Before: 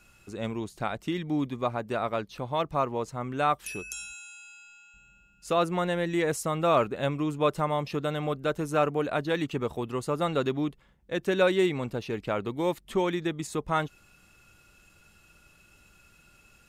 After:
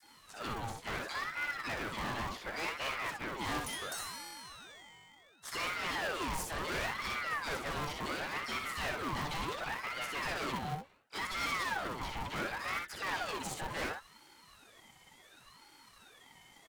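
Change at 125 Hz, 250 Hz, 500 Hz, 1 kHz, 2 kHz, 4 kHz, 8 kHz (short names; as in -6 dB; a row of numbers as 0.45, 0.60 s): -12.0, -14.5, -16.0, -7.0, 0.0, -1.0, -2.0 dB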